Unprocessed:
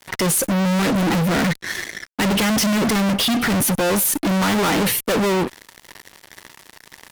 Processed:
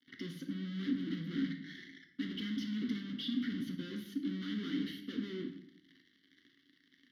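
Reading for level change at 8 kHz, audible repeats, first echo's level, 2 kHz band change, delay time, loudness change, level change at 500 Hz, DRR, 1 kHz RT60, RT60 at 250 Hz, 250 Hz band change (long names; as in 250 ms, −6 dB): below −40 dB, no echo audible, no echo audible, −25.0 dB, no echo audible, −20.5 dB, −28.0 dB, 4.0 dB, 0.60 s, 1.0 s, −16.5 dB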